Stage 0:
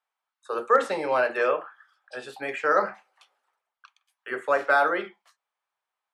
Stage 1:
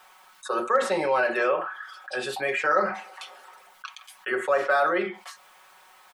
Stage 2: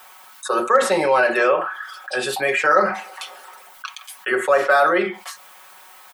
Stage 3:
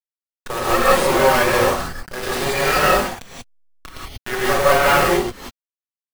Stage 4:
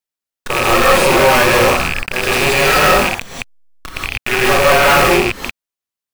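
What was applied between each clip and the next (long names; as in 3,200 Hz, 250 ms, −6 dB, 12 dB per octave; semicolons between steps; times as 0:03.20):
comb filter 5.4 ms, depth 71%; envelope flattener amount 50%; level −5.5 dB
high-shelf EQ 9,800 Hz +11 dB; level +6.5 dB
hold until the input has moved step −20.5 dBFS; half-wave rectification; reverb whose tail is shaped and stops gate 210 ms rising, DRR −7 dB; level −1 dB
loose part that buzzes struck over −36 dBFS, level −10 dBFS; soft clipping −12.5 dBFS, distortion −12 dB; level +7.5 dB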